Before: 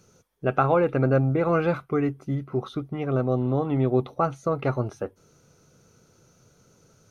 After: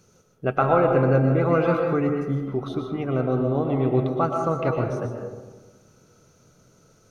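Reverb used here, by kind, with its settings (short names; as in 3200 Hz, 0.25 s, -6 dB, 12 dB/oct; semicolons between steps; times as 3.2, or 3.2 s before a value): digital reverb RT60 1.3 s, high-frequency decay 0.35×, pre-delay 85 ms, DRR 2.5 dB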